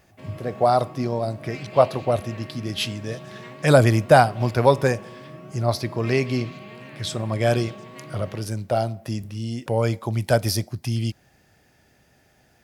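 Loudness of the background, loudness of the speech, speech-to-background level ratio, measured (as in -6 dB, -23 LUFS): -41.0 LUFS, -23.0 LUFS, 18.0 dB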